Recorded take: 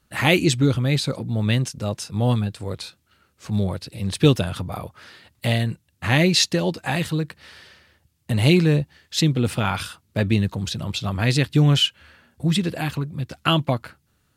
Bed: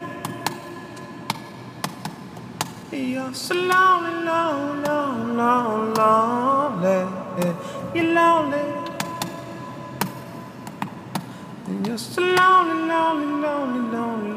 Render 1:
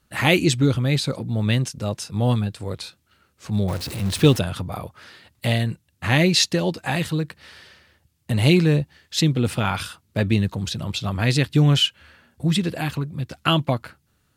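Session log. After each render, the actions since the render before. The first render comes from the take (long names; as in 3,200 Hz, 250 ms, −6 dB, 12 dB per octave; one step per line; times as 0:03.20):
0:03.68–0:04.39: converter with a step at zero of −28.5 dBFS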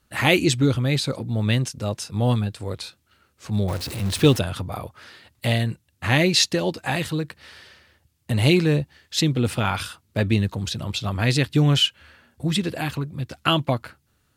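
parametric band 170 Hz −4.5 dB 0.39 octaves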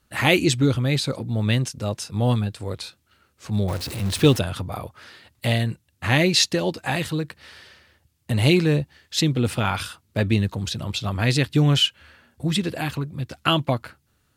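no processing that can be heard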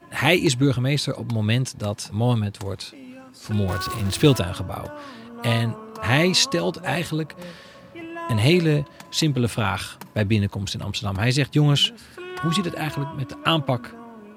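mix in bed −16 dB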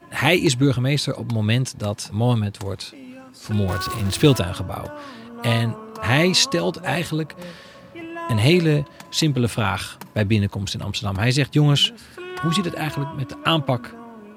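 level +1.5 dB
brickwall limiter −3 dBFS, peak gain reduction 1.5 dB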